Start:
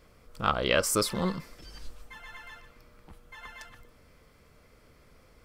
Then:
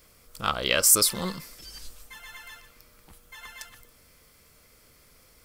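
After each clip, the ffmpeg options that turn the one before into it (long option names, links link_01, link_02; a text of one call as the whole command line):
ffmpeg -i in.wav -af "crystalizer=i=4.5:c=0,volume=-3dB" out.wav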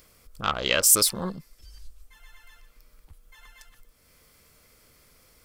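ffmpeg -i in.wav -filter_complex "[0:a]afwtdn=0.0178,asplit=2[link_01][link_02];[link_02]acompressor=mode=upward:threshold=-35dB:ratio=2.5,volume=-1dB[link_03];[link_01][link_03]amix=inputs=2:normalize=0,volume=-5dB" out.wav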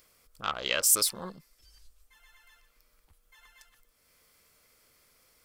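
ffmpeg -i in.wav -af "lowshelf=frequency=300:gain=-9,volume=-5dB" out.wav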